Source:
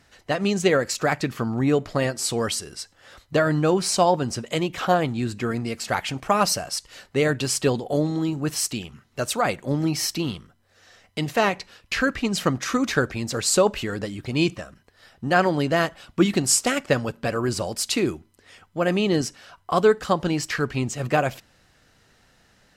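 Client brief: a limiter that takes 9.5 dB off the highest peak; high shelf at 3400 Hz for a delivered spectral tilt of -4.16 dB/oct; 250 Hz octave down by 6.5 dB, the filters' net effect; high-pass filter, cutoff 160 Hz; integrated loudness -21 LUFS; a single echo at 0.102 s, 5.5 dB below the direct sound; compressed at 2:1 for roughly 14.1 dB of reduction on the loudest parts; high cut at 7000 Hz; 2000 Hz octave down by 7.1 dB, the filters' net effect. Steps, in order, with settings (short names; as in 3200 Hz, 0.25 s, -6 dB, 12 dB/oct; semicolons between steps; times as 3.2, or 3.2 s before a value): HPF 160 Hz; LPF 7000 Hz; bell 250 Hz -8 dB; bell 2000 Hz -7.5 dB; high shelf 3400 Hz -7 dB; compressor 2:1, threshold -43 dBFS; limiter -30 dBFS; echo 0.102 s -5.5 dB; gain +19.5 dB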